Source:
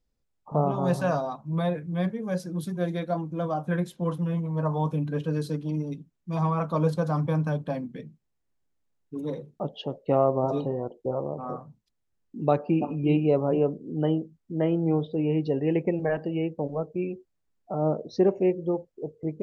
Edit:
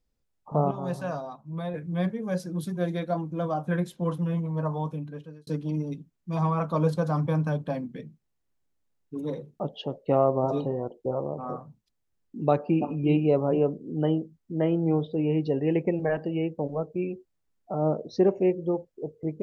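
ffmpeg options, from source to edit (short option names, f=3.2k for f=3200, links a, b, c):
-filter_complex "[0:a]asplit=4[a][b][c][d];[a]atrim=end=0.712[e];[b]atrim=start=0.708:end=1.742,asetpts=PTS-STARTPTS,volume=-6.5dB[f];[c]atrim=start=1.738:end=5.47,asetpts=PTS-STARTPTS,afade=t=out:st=2.712:d=1.02[g];[d]atrim=start=5.47,asetpts=PTS-STARTPTS,afade=t=in:d=0.004:c=hsin[h];[e][f]acrossfade=d=0.004:c1=hsin:c2=hsin[i];[g][h]concat=n=2:v=0:a=1[j];[i][j]acrossfade=d=0.004:c1=hsin:c2=hsin"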